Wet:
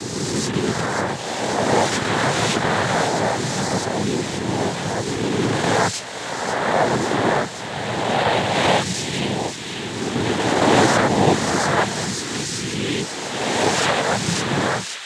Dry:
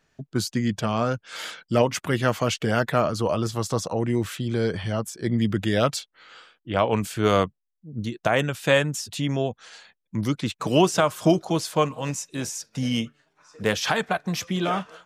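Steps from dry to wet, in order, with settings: reverse spectral sustain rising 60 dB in 2.38 s; noise-vocoded speech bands 6; feedback echo behind a high-pass 538 ms, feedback 78%, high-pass 2.2 kHz, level -7 dB

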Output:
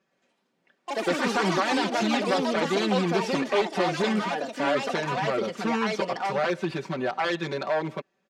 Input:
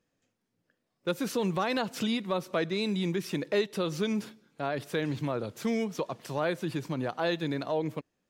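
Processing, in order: one-sided wavefolder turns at -26 dBFS; high-pass 470 Hz 6 dB/octave; treble shelf 4.8 kHz -10 dB; band-stop 3 kHz, Q 20; comb 5.2 ms, depth 97%; in parallel at +2 dB: peak limiter -24.5 dBFS, peak gain reduction 6 dB; on the sum: ever faster or slower copies 115 ms, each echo +4 st, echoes 3; distance through air 54 m

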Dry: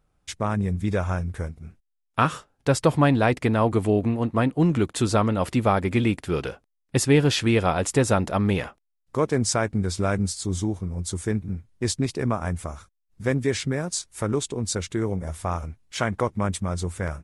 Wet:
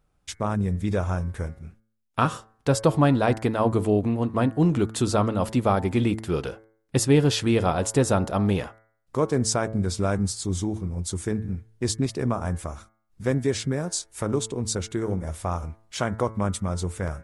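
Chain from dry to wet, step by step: de-hum 110.3 Hz, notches 20; dynamic bell 2.1 kHz, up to -6 dB, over -42 dBFS, Q 1.4

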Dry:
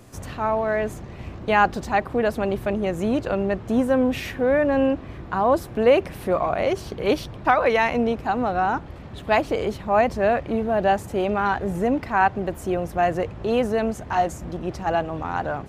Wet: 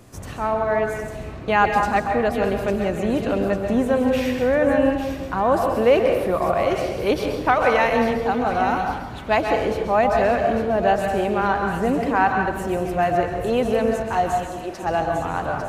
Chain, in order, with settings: 14.43–14.83 s: high-pass 340 Hz 12 dB/octave; feedback echo behind a high-pass 850 ms, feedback 56%, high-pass 3.1 kHz, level -6 dB; plate-style reverb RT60 1.1 s, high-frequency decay 0.55×, pre-delay 115 ms, DRR 3 dB

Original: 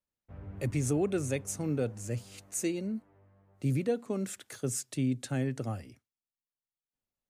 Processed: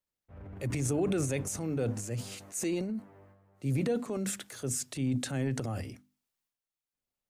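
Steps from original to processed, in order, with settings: hum notches 50/100/150/200/250/300 Hz; transient shaper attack -3 dB, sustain +9 dB

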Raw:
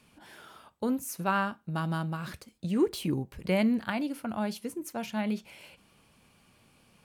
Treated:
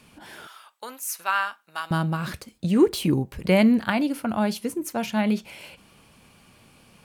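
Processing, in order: 0.47–1.91 s: high-pass 1.2 kHz 12 dB/octave; trim +8 dB

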